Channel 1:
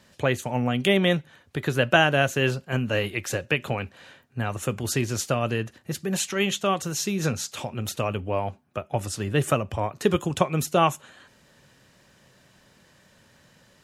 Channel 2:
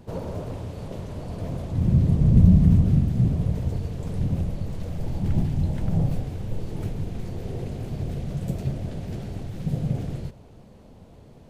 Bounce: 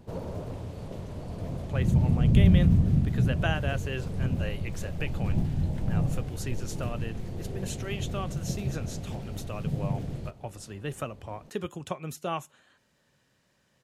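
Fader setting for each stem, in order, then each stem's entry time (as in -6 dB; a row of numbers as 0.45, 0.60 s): -12.0, -4.0 dB; 1.50, 0.00 s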